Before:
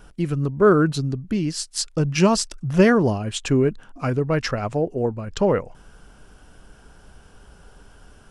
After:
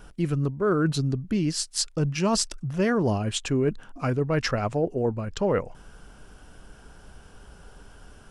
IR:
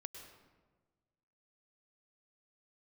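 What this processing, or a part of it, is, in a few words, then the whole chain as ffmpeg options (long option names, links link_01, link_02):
compression on the reversed sound: -af "areverse,acompressor=threshold=-20dB:ratio=6,areverse"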